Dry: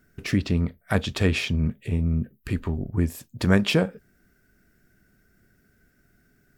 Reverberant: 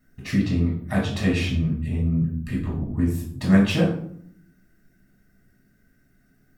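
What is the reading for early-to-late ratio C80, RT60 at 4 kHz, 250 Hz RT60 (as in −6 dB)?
9.5 dB, 0.40 s, 1.0 s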